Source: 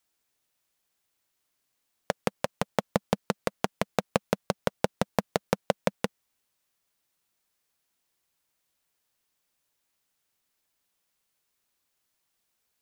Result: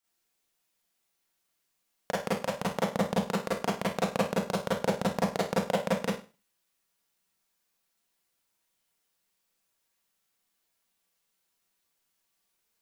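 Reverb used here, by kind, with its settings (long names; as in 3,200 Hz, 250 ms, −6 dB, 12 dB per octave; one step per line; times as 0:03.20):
four-comb reverb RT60 0.33 s, combs from 33 ms, DRR −7.5 dB
level −8 dB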